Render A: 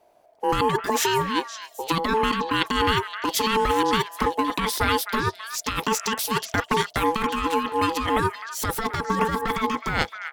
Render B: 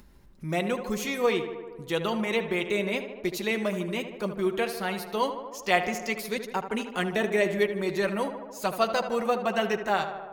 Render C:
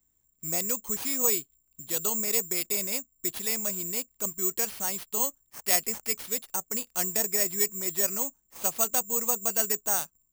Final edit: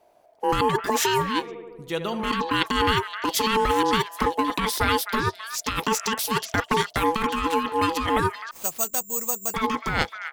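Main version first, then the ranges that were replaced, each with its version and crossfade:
A
1.44–2.25 from B, crossfade 0.16 s
8.51–9.54 from C

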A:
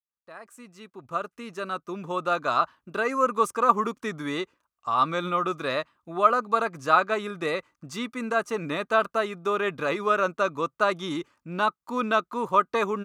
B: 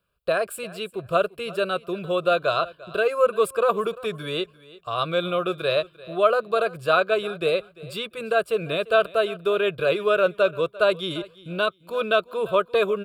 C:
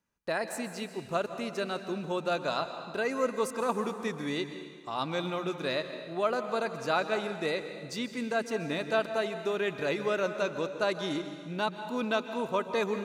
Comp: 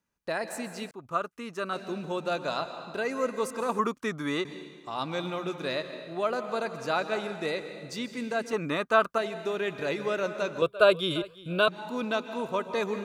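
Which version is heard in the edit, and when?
C
0.91–1.73 from A
3.79–4.45 from A
8.53–9.18 from A
10.62–11.68 from B

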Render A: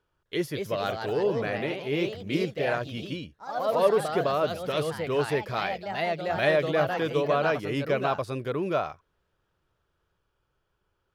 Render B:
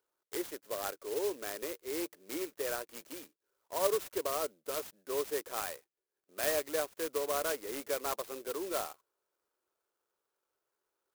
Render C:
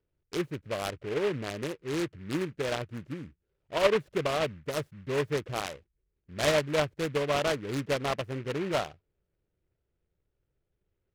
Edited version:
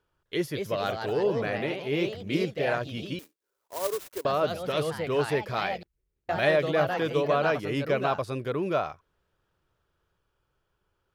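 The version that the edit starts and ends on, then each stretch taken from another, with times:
A
3.19–4.25 from B
5.83–6.29 from C

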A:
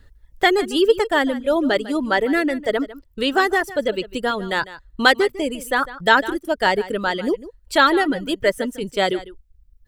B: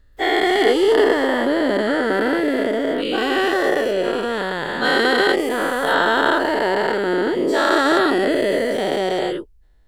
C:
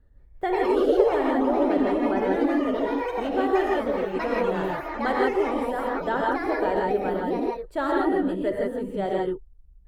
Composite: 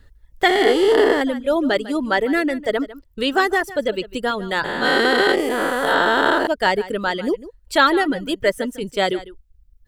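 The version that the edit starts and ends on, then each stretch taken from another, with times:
A
0.48–1.21 from B
4.64–6.47 from B
not used: C

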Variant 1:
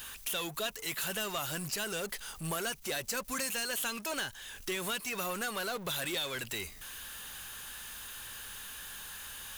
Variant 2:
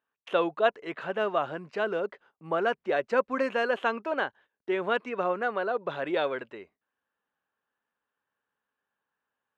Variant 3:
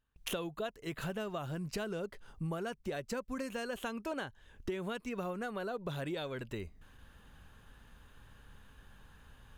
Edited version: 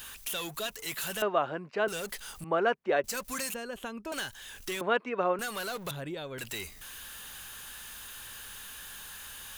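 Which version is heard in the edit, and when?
1
1.22–1.88 from 2
2.44–3.04 from 2
3.54–4.12 from 3
4.81–5.39 from 2
5.91–6.38 from 3

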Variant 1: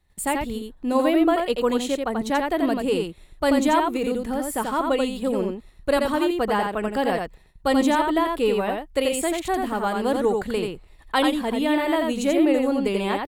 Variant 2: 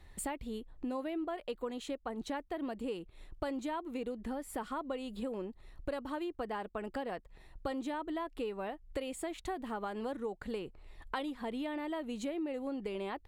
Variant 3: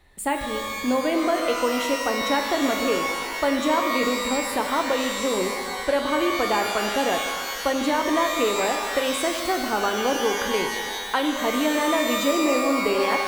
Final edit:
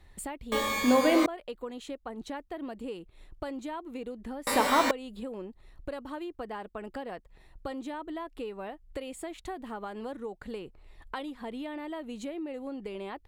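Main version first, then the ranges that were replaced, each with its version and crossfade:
2
0.52–1.26 from 3
4.47–4.91 from 3
not used: 1

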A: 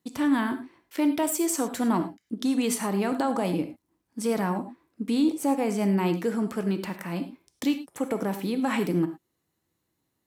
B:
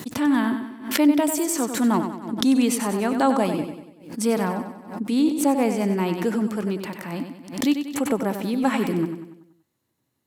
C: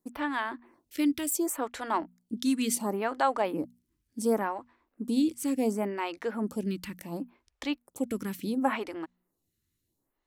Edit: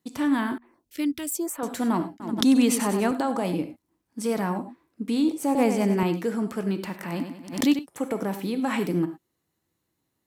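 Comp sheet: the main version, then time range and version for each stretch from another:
A
0.58–1.63 from C
2.2–3.11 from B
5.55–6.03 from B
7.03–7.79 from B

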